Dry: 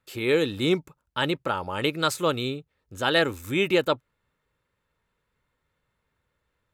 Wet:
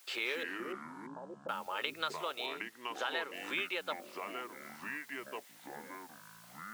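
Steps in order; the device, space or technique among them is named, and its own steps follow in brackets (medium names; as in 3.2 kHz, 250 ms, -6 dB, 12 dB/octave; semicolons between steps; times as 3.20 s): baby monitor (band-pass 440–3800 Hz; compression 6:1, threshold -39 dBFS, peak gain reduction 19.5 dB; white noise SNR 22 dB); high-pass 1.1 kHz 6 dB/octave; 0.43–1.49 s: inverse Chebyshev low-pass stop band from 1.8 kHz, stop band 50 dB; 2.46–3.34 s: treble shelf 6.5 kHz -11.5 dB; ever faster or slower copies 149 ms, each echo -5 st, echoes 3, each echo -6 dB; trim +7.5 dB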